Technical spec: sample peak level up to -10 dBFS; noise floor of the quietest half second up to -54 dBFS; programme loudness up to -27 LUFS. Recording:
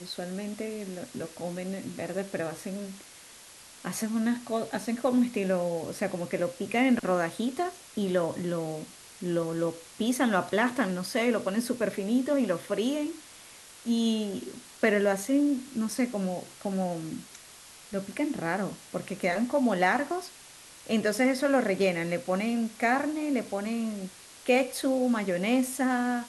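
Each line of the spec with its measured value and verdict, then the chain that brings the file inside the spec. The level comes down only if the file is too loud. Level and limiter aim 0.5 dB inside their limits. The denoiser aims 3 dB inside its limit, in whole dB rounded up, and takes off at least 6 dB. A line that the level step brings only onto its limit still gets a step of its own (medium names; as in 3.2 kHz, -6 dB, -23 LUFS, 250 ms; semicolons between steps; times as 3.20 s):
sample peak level -11.0 dBFS: pass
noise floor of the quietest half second -50 dBFS: fail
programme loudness -29.0 LUFS: pass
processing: noise reduction 7 dB, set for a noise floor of -50 dBFS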